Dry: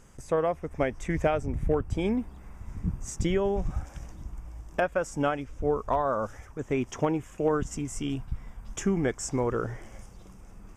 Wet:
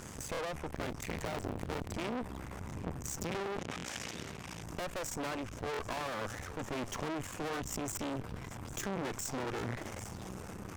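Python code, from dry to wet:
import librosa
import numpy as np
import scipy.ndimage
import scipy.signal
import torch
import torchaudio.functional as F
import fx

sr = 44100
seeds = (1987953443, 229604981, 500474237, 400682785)

y = fx.cycle_switch(x, sr, every=3, mode='muted', at=(0.68, 1.93))
y = fx.tube_stage(y, sr, drive_db=40.0, bias=0.55)
y = scipy.signal.sosfilt(scipy.signal.butter(4, 75.0, 'highpass', fs=sr, output='sos'), y)
y = y + 10.0 ** (-23.0 / 20.0) * np.pad(y, (int(796 * sr / 1000.0), 0))[:len(y)]
y = np.maximum(y, 0.0)
y = fx.cheby_harmonics(y, sr, harmonics=(3, 8), levels_db=(-21, -30), full_scale_db=-32.5)
y = fx.weighting(y, sr, curve='D', at=(3.59, 4.63))
y = fx.buffer_glitch(y, sr, at_s=(0.32, 3.77, 5.72), block=1024, repeats=2)
y = fx.env_flatten(y, sr, amount_pct=50)
y = F.gain(torch.from_numpy(y), 10.5).numpy()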